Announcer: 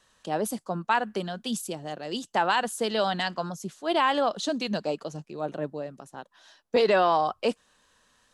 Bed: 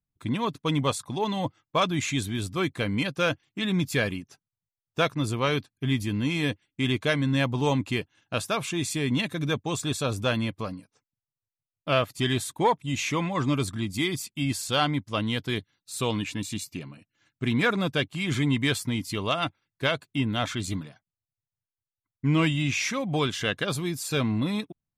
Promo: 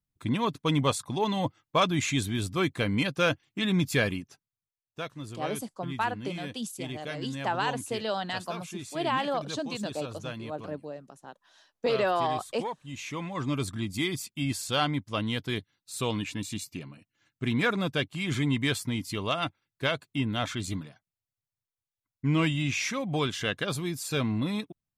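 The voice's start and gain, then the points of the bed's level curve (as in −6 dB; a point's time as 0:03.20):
5.10 s, −5.0 dB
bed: 0:04.23 0 dB
0:05.02 −12.5 dB
0:12.79 −12.5 dB
0:13.71 −2.5 dB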